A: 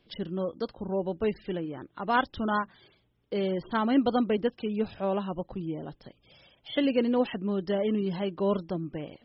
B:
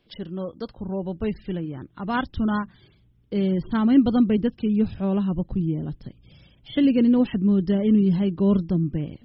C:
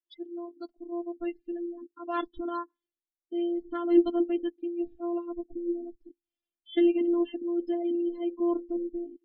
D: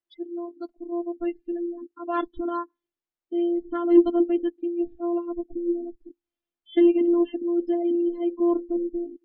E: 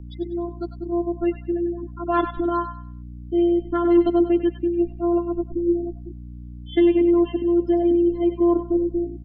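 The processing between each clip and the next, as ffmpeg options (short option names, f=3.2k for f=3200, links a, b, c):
-af "asubboost=boost=7:cutoff=240"
-af "afftfilt=real='hypot(re,im)*cos(PI*b)':imag='0':win_size=512:overlap=0.75,lowshelf=f=180:t=q:w=1.5:g=-10,afftdn=nr=34:nf=-36,volume=-2.5dB"
-af "lowpass=f=1.8k:p=1,acontrast=38"
-filter_complex "[0:a]aeval=exprs='val(0)+0.00891*(sin(2*PI*60*n/s)+sin(2*PI*2*60*n/s)/2+sin(2*PI*3*60*n/s)/3+sin(2*PI*4*60*n/s)/4+sin(2*PI*5*60*n/s)/5)':c=same,acrossover=split=230|730[a][b][c];[b]alimiter=limit=-20dB:level=0:latency=1[d];[c]aecho=1:1:97|194|291|388:0.422|0.127|0.038|0.0114[e];[a][d][e]amix=inputs=3:normalize=0,volume=5.5dB"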